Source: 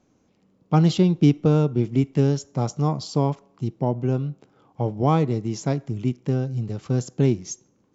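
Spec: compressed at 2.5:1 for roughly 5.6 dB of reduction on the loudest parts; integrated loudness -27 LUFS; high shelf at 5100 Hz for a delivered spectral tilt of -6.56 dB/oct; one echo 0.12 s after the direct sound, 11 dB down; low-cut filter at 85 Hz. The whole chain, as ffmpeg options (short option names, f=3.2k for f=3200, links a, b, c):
-af "highpass=85,highshelf=f=5.1k:g=-4.5,acompressor=threshold=-21dB:ratio=2.5,aecho=1:1:120:0.282"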